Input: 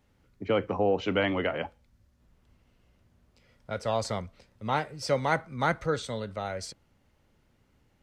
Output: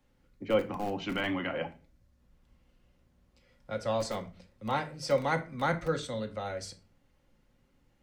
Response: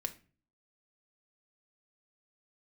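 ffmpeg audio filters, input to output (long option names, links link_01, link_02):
-filter_complex "[0:a]asettb=1/sr,asplit=3[link_01][link_02][link_03];[link_01]atrim=end=0.674[link_04];[link_02]atrim=start=0.67:end=1.5,asetpts=PTS-STARTPTS,afade=type=in:duration=0.004:curve=qsin,afade=type=out:start_time=0.826:duration=0.004:curve=qsin,equalizer=frequency=490:width_type=o:width=0.45:gain=-14[link_05];[link_03]atrim=start=1.496[link_06];[link_04][link_05]acrossfade=duration=0.004:curve1=hsin:curve2=qsin[link_07];[link_07][link_06]acrossfade=duration=0.004:curve1=qsin:curve2=hsin,acrossover=split=150|760[link_08][link_09][link_10];[link_08]aeval=exprs='(mod(59.6*val(0)+1,2)-1)/59.6':channel_layout=same[link_11];[link_11][link_09][link_10]amix=inputs=3:normalize=0[link_12];[1:a]atrim=start_sample=2205[link_13];[link_12][link_13]afir=irnorm=-1:irlink=0,volume=-2.5dB"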